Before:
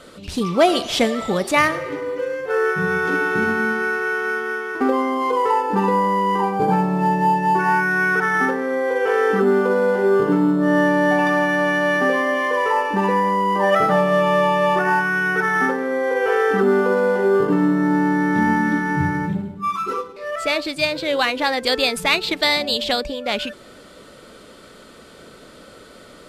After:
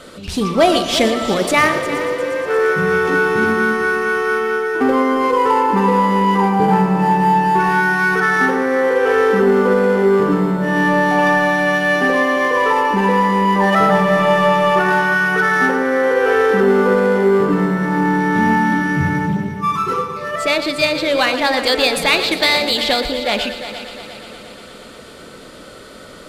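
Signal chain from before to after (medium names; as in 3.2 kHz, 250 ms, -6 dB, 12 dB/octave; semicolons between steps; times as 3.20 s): de-hum 59.08 Hz, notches 27; in parallel at -3.5 dB: saturation -20.5 dBFS, distortion -10 dB; on the sum: multi-head delay 118 ms, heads first and third, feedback 66%, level -13 dB; trim +1 dB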